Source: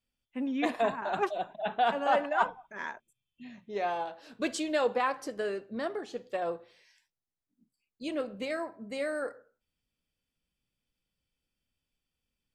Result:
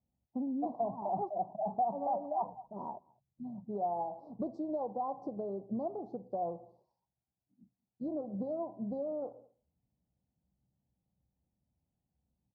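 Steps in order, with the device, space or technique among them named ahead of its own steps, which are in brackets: inverse Chebyshev band-stop 1.5–3.1 kHz, stop band 50 dB; bass amplifier (compression 4:1, threshold -38 dBFS, peak gain reduction 13 dB; cabinet simulation 63–2300 Hz, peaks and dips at 65 Hz +8 dB, 130 Hz +9 dB, 190 Hz +7 dB, 460 Hz -5 dB, 750 Hz +6 dB, 1.8 kHz -8 dB); peaking EQ 75 Hz +4 dB 0.77 oct; echo from a far wall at 36 m, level -27 dB; trim +2.5 dB

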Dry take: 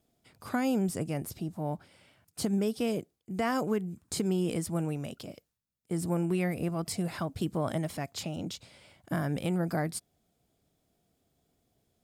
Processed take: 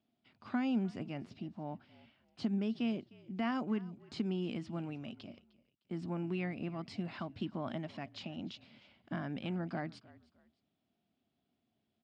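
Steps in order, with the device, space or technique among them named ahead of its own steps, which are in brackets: frequency-shifting delay pedal into a guitar cabinet (frequency-shifting echo 306 ms, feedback 31%, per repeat -46 Hz, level -21 dB; cabinet simulation 110–4400 Hz, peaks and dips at 150 Hz -4 dB, 230 Hz +7 dB, 480 Hz -9 dB, 2.8 kHz +5 dB); trim -7 dB

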